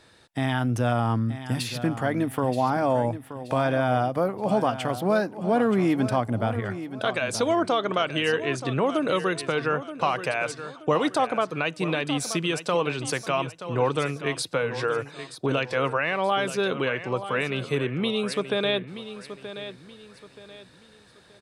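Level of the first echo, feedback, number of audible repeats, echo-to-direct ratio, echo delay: -12.0 dB, 34%, 3, -11.5 dB, 0.927 s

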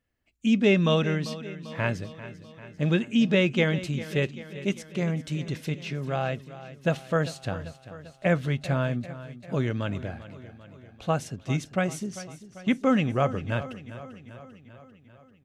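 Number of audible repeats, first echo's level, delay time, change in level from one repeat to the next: 5, -15.0 dB, 0.394 s, -4.5 dB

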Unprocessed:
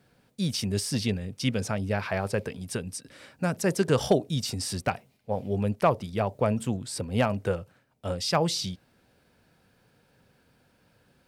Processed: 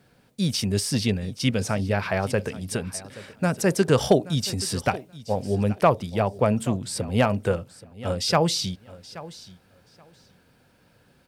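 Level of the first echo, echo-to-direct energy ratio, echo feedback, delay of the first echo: -18.0 dB, -18.0 dB, 17%, 0.827 s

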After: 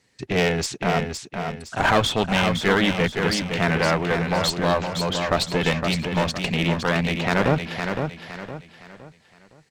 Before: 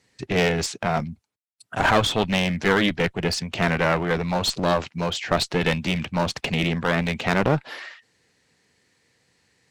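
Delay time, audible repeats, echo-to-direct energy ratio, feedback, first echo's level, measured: 0.513 s, 4, -5.5 dB, 36%, -6.0 dB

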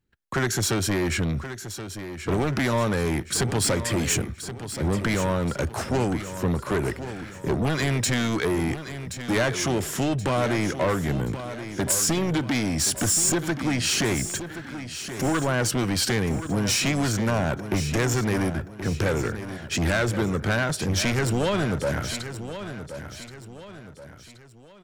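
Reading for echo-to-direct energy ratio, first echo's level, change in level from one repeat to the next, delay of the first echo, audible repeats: -10.0 dB, -11.0 dB, -7.5 dB, 1.076 s, 3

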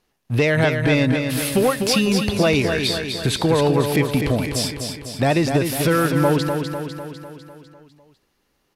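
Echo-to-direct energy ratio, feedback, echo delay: -4.5 dB, 57%, 0.25 s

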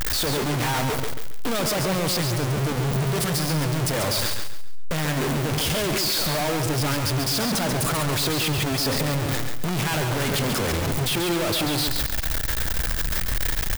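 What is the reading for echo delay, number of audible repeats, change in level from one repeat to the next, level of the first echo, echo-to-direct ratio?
0.138 s, 3, -10.0 dB, -6.0 dB, -5.5 dB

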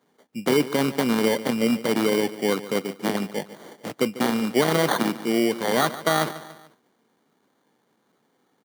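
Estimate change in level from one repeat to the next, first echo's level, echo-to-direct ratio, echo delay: -6.0 dB, -15.5 dB, -14.5 dB, 0.145 s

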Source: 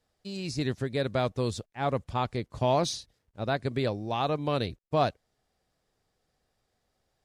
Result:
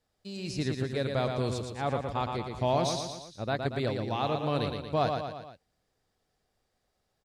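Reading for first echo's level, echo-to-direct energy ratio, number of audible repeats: -5.0 dB, -3.5 dB, 4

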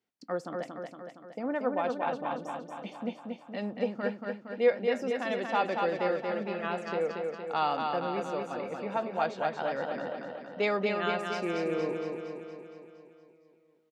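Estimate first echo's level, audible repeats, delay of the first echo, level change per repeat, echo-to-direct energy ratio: -4.0 dB, 7, 0.232 s, -4.5 dB, -2.0 dB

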